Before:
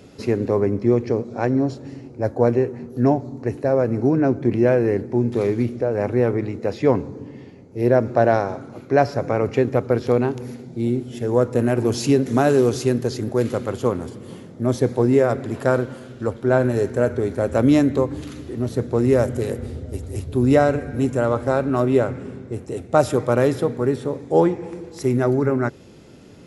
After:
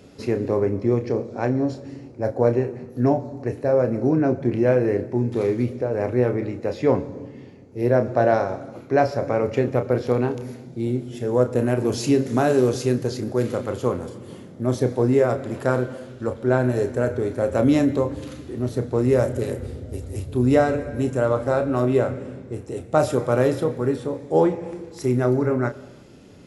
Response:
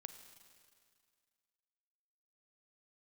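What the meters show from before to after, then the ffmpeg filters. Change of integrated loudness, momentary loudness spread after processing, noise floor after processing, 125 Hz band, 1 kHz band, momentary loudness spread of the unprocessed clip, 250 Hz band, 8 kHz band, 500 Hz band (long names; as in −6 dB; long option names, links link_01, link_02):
−1.5 dB, 13 LU, −43 dBFS, −1.5 dB, −2.0 dB, 13 LU, −2.0 dB, −2.0 dB, −1.5 dB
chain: -filter_complex "[0:a]asplit=2[link_01][link_02];[link_02]equalizer=frequency=560:width=6.4:gain=9[link_03];[1:a]atrim=start_sample=2205,afade=type=out:start_time=0.4:duration=0.01,atrim=end_sample=18081,adelay=32[link_04];[link_03][link_04]afir=irnorm=-1:irlink=0,volume=-3.5dB[link_05];[link_01][link_05]amix=inputs=2:normalize=0,volume=-2.5dB"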